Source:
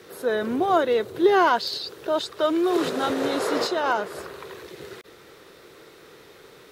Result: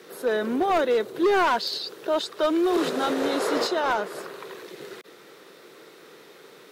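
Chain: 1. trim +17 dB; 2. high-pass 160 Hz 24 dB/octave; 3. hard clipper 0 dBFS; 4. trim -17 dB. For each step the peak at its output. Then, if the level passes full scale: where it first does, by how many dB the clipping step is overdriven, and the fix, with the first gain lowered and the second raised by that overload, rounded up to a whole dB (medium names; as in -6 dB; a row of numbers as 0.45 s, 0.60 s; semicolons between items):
+9.5 dBFS, +9.5 dBFS, 0.0 dBFS, -17.0 dBFS; step 1, 9.5 dB; step 1 +7 dB, step 4 -7 dB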